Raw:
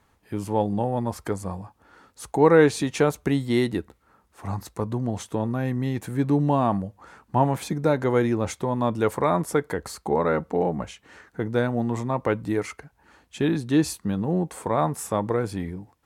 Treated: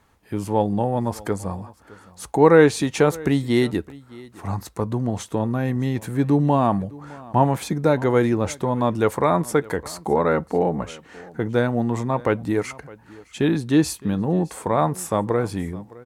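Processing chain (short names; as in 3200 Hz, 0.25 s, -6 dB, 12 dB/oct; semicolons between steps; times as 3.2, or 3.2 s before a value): echo 0.612 s -21.5 dB; gain +3 dB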